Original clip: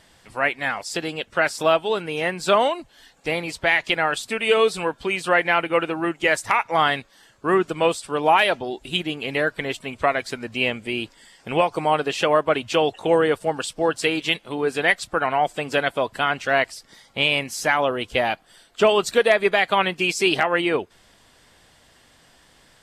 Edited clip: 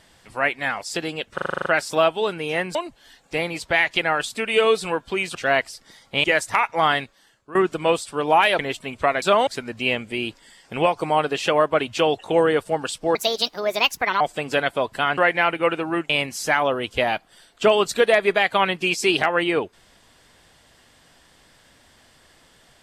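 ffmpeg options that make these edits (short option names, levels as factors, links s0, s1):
-filter_complex "[0:a]asplit=20[s0][s1][s2][s3][s4][s5][s6][s7][s8][s9][s10][s11][s12][s13][s14][s15][s16][s17][s18][s19];[s0]atrim=end=1.382[s20];[s1]atrim=start=1.338:end=1.382[s21];[s2]atrim=start=1.338:end=1.382[s22];[s3]atrim=start=1.338:end=1.382[s23];[s4]atrim=start=1.338:end=1.382[s24];[s5]atrim=start=1.338:end=1.382[s25];[s6]atrim=start=1.338:end=1.382[s26];[s7]atrim=start=1.338:end=1.382[s27];[s8]atrim=start=1.338:end=2.432[s28];[s9]atrim=start=2.678:end=5.282[s29];[s10]atrim=start=16.378:end=17.272[s30];[s11]atrim=start=6.198:end=7.51,asetpts=PTS-STARTPTS,afade=t=out:st=0.722:d=0.59:silence=0.125893[s31];[s12]atrim=start=7.51:end=8.552,asetpts=PTS-STARTPTS,afade=t=in:d=0.004:c=hsin:silence=0.125893[s32];[s13]atrim=start=9.588:end=10.222[s33];[s14]atrim=start=2.428:end=2.682[s34];[s15]atrim=start=10.218:end=13.904[s35];[s16]atrim=start=13.9:end=15.41,asetpts=PTS-STARTPTS,asetrate=63063,aresample=44100,atrim=end_sample=46567,asetpts=PTS-STARTPTS[s36];[s17]atrim=start=15.406:end=16.382[s37];[s18]atrim=start=5.278:end=6.202[s38];[s19]atrim=start=17.268[s39];[s20][s21]acrossfade=d=0.004:c1=hsin:c2=hsin[s40];[s40][s22]acrossfade=d=0.004:c1=hsin:c2=hsin[s41];[s41][s23]acrossfade=d=0.004:c1=hsin:c2=hsin[s42];[s42][s24]acrossfade=d=0.004:c1=hsin:c2=hsin[s43];[s43][s25]acrossfade=d=0.004:c1=hsin:c2=hsin[s44];[s44][s26]acrossfade=d=0.004:c1=hsin:c2=hsin[s45];[s45][s27]acrossfade=d=0.004:c1=hsin:c2=hsin[s46];[s46][s28]acrossfade=d=0.004:c1=hsin:c2=hsin[s47];[s47][s29]acrossfade=d=0.004:c1=hsin:c2=hsin[s48];[s48][s30]acrossfade=d=0.004:c1=hsin:c2=hsin[s49];[s31][s32]concat=n=2:v=0:a=1[s50];[s49][s50]acrossfade=d=0.004:c1=hsin:c2=hsin[s51];[s51][s33]acrossfade=d=0.004:c1=hsin:c2=hsin[s52];[s52][s34]acrossfade=d=0.004:c1=hsin:c2=hsin[s53];[s53][s35]acrossfade=d=0.004:c1=hsin:c2=hsin[s54];[s54][s36]acrossfade=d=0.004:c1=hsin:c2=hsin[s55];[s55][s37]acrossfade=d=0.004:c1=hsin:c2=hsin[s56];[s56][s38]acrossfade=d=0.004:c1=hsin:c2=hsin[s57];[s57][s39]acrossfade=d=0.004:c1=hsin:c2=hsin"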